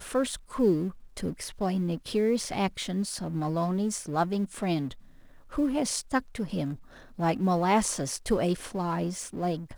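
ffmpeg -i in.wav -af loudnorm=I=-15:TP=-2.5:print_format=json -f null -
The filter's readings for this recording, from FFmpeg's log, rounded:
"input_i" : "-29.1",
"input_tp" : "-11.6",
"input_lra" : "1.4",
"input_thresh" : "-39.4",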